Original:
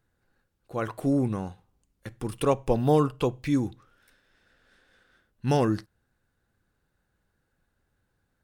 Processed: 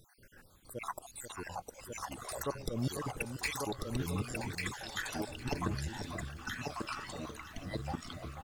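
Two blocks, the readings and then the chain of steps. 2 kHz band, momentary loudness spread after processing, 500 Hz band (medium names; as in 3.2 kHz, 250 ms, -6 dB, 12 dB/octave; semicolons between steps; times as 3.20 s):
+4.0 dB, 9 LU, -13.5 dB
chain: random holes in the spectrogram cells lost 66%; treble shelf 2.3 kHz +9.5 dB; slow attack 239 ms; compression 2:1, threshold -57 dBFS, peak gain reduction 16.5 dB; delay 1143 ms -3.5 dB; ever faster or slower copies 379 ms, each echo -5 st, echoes 2; echo whose repeats swap between lows and highs 488 ms, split 1.5 kHz, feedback 65%, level -9 dB; trim +13 dB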